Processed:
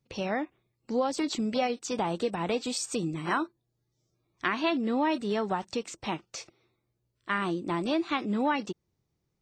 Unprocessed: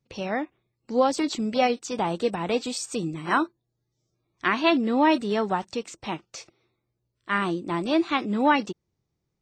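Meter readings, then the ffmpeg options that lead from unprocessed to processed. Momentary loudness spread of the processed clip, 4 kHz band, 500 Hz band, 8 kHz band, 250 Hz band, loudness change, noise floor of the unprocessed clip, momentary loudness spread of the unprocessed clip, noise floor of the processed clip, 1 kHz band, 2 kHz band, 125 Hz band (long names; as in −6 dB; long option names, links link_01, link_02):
9 LU, −4.0 dB, −5.0 dB, −1.0 dB, −4.5 dB, −5.0 dB, −80 dBFS, 13 LU, −80 dBFS, −6.0 dB, −5.5 dB, −2.5 dB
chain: -af "acompressor=threshold=-27dB:ratio=2.5"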